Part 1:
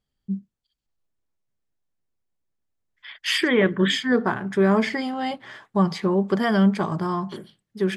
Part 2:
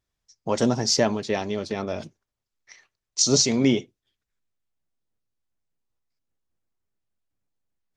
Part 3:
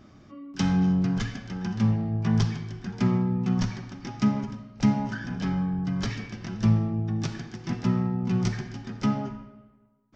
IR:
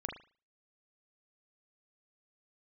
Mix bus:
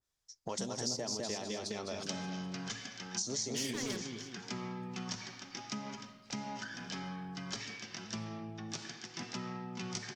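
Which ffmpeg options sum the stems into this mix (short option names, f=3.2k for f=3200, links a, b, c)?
-filter_complex "[0:a]volume=24dB,asoftclip=hard,volume=-24dB,adelay=300,volume=-9.5dB[a];[1:a]equalizer=f=2.6k:w=1.1:g=-5,volume=-3dB,asplit=3[b][c][d];[c]volume=-13dB[e];[2:a]highpass=f=350:p=1,adelay=1500,volume=-4dB[f];[d]apad=whole_len=364377[g];[a][g]sidechaingate=range=-33dB:threshold=-55dB:ratio=16:detection=peak[h];[b][f]amix=inputs=2:normalize=0,lowshelf=f=430:g=-6.5,acompressor=threshold=-38dB:ratio=2,volume=0dB[i];[e]aecho=0:1:206|412|618|824|1030:1|0.38|0.144|0.0549|0.0209[j];[h][i][j]amix=inputs=3:normalize=0,equalizer=f=6.1k:w=0.36:g=6,acrossover=split=990|7100[k][l][m];[k]acompressor=threshold=-37dB:ratio=4[n];[l]acompressor=threshold=-47dB:ratio=4[o];[m]acompressor=threshold=-49dB:ratio=4[p];[n][o][p]amix=inputs=3:normalize=0,adynamicequalizer=threshold=0.00251:dfrequency=2000:dqfactor=0.7:tfrequency=2000:tqfactor=0.7:attack=5:release=100:ratio=0.375:range=2.5:mode=boostabove:tftype=highshelf"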